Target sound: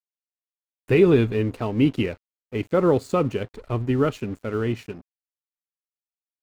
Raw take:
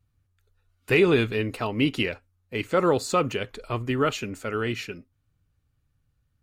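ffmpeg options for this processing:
-af "tiltshelf=f=780:g=6.5,aeval=exprs='sgn(val(0))*max(abs(val(0))-0.00631,0)':c=same"

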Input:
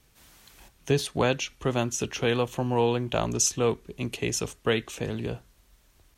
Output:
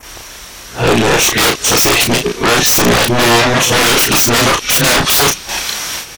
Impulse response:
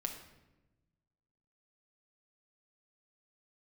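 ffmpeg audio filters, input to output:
-filter_complex "[0:a]areverse,equalizer=f=5.7k:w=8:g=8.5,asoftclip=type=tanh:threshold=-20dB,adynamicequalizer=threshold=0.00891:dfrequency=4200:dqfactor=1.1:tfrequency=4200:tqfactor=1.1:attack=5:release=100:ratio=0.375:range=3:mode=boostabove:tftype=bell,asplit=2[a][b];[b]highpass=f=720:p=1,volume=16dB,asoftclip=type=tanh:threshold=-13dB[c];[a][c]amix=inputs=2:normalize=0,lowpass=f=6.4k:p=1,volume=-6dB,aeval=exprs='0.224*sin(PI/2*5.62*val(0)/0.224)':c=same,asplit=2[d][e];[e]adelay=34,volume=-4.5dB[f];[d][f]amix=inputs=2:normalize=0,volume=4.5dB"

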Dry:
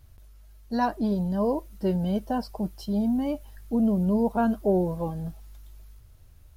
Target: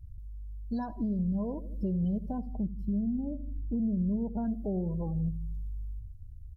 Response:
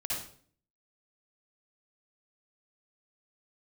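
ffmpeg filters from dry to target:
-filter_complex "[0:a]asettb=1/sr,asplit=3[a][b][c];[a]atrim=end=2.384[d];[b]atrim=start=2.38:end=4.45,asetpts=PTS-STARTPTS,afade=t=in:d=0.004:c=qsin,afade=t=out:st=2.066:d=0.004:c=qsin,equalizer=f=5k:w=0.36:g=-15[e];[c]atrim=start=4.446[f];[d][e]acrossfade=d=0.004:c1=hsin:c2=qsin[g];[g][f]acrossfade=d=0.004:c1=qsin:c2=hsin,aecho=1:1:80|160|240|320|400:0.178|0.096|0.0519|0.028|0.0151,acompressor=threshold=-34dB:ratio=2.5,bass=f=250:g=13,treble=f=4k:g=9,afftdn=nr=22:nf=-35,volume=-5.5dB"

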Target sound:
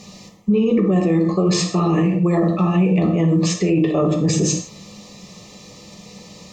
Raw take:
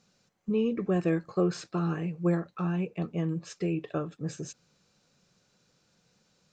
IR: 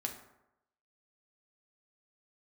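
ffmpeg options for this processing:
-filter_complex "[0:a]areverse,acompressor=threshold=-37dB:ratio=12,areverse,asuperstop=centerf=1500:order=12:qfactor=3.6[a];[1:a]atrim=start_sample=2205,atrim=end_sample=6174,asetrate=35721,aresample=44100[b];[a][b]afir=irnorm=-1:irlink=0,alimiter=level_in=34.5dB:limit=-1dB:release=50:level=0:latency=1,volume=-8.5dB"

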